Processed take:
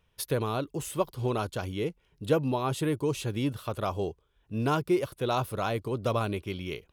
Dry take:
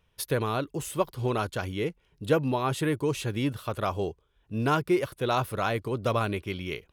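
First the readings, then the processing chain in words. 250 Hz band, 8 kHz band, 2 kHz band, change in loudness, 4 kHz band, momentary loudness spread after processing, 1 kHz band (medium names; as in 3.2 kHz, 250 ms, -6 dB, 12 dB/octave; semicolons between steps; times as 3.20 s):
-1.0 dB, -1.0 dB, -5.0 dB, -1.5 dB, -2.0 dB, 7 LU, -2.5 dB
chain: dynamic bell 1.8 kHz, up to -6 dB, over -46 dBFS, Q 1.6; trim -1 dB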